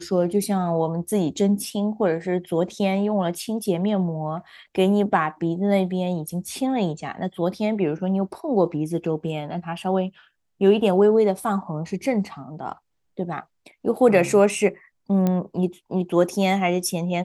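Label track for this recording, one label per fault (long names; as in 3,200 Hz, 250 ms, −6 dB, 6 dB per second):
15.270000	15.270000	click −11 dBFS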